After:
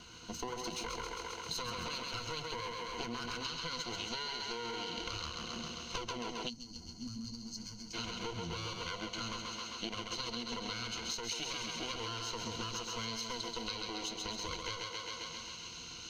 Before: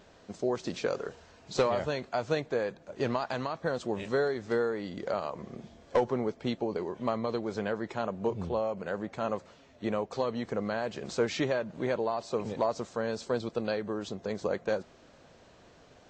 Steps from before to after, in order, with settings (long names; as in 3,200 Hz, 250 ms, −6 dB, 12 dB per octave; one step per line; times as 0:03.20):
lower of the sound and its delayed copy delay 0.76 ms
EQ curve with evenly spaced ripples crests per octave 1.9, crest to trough 12 dB
feedback echo with a high-pass in the loop 133 ms, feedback 65%, high-pass 160 Hz, level −5.5 dB
brickwall limiter −23 dBFS, peak gain reduction 10 dB
flat-topped bell 4,200 Hz +9.5 dB, from 0:03.43 +16 dB
downward compressor 6 to 1, threshold −39 dBFS, peak gain reduction 16 dB
0:06.50–0:07.94: gain on a spectral selection 320–4,200 Hz −19 dB
level +1.5 dB